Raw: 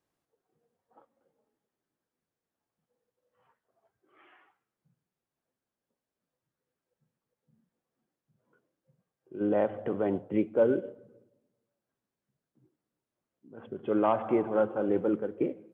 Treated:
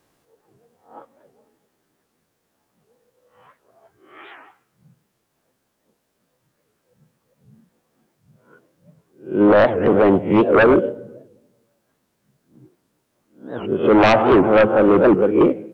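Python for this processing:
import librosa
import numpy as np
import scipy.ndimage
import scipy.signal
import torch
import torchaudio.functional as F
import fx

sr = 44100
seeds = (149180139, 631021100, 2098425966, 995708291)

y = fx.spec_swells(x, sr, rise_s=0.34)
y = fx.fold_sine(y, sr, drive_db=10, ceiling_db=-11.5)
y = fx.record_warp(y, sr, rpm=78.0, depth_cents=250.0)
y = F.gain(torch.from_numpy(y), 3.5).numpy()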